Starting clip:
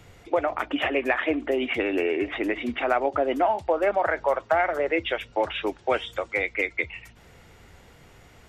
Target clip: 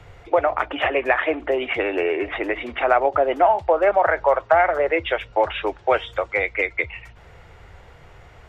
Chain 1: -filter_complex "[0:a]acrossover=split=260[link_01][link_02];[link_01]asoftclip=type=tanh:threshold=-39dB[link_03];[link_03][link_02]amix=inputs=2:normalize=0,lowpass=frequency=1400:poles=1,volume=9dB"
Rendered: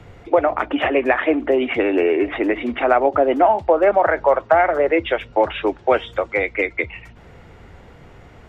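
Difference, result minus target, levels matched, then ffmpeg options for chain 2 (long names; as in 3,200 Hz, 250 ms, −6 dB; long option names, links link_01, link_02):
250 Hz band +6.5 dB
-filter_complex "[0:a]acrossover=split=260[link_01][link_02];[link_01]asoftclip=type=tanh:threshold=-39dB[link_03];[link_03][link_02]amix=inputs=2:normalize=0,lowpass=frequency=1400:poles=1,equalizer=frequency=240:width_type=o:width=1.2:gain=-13,volume=9dB"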